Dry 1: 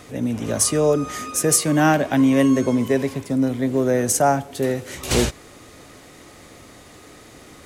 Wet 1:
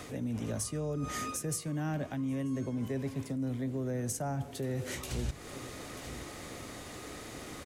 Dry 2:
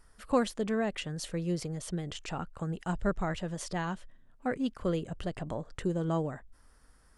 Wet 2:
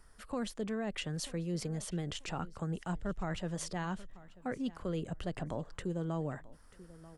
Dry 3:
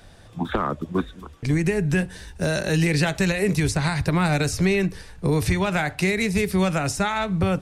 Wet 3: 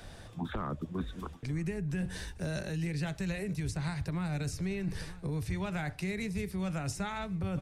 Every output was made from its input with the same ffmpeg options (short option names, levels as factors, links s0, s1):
-filter_complex "[0:a]acrossover=split=190[s0][s1];[s1]acompressor=threshold=0.0282:ratio=4[s2];[s0][s2]amix=inputs=2:normalize=0,aecho=1:1:938|1876:0.0794|0.0175,areverse,acompressor=threshold=0.0251:ratio=6,areverse"